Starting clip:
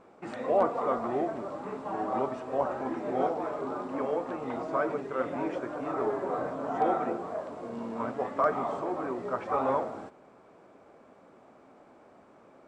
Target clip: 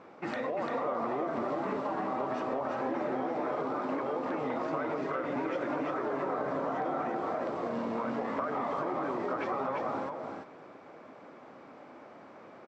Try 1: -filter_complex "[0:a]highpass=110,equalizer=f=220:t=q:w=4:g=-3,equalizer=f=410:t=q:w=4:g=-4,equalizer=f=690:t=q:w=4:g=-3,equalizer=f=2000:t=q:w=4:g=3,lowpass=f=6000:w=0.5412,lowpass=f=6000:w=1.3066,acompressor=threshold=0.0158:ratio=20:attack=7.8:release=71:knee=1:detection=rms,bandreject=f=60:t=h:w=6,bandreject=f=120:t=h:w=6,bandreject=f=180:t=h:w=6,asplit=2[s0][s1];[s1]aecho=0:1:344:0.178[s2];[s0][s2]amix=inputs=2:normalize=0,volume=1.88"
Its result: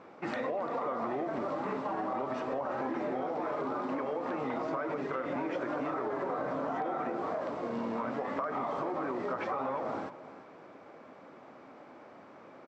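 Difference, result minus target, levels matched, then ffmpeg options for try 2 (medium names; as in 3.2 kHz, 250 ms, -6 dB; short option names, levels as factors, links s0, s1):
echo-to-direct -11 dB
-filter_complex "[0:a]highpass=110,equalizer=f=220:t=q:w=4:g=-3,equalizer=f=410:t=q:w=4:g=-4,equalizer=f=690:t=q:w=4:g=-3,equalizer=f=2000:t=q:w=4:g=3,lowpass=f=6000:w=0.5412,lowpass=f=6000:w=1.3066,acompressor=threshold=0.0158:ratio=20:attack=7.8:release=71:knee=1:detection=rms,bandreject=f=60:t=h:w=6,bandreject=f=120:t=h:w=6,bandreject=f=180:t=h:w=6,asplit=2[s0][s1];[s1]aecho=0:1:344:0.631[s2];[s0][s2]amix=inputs=2:normalize=0,volume=1.88"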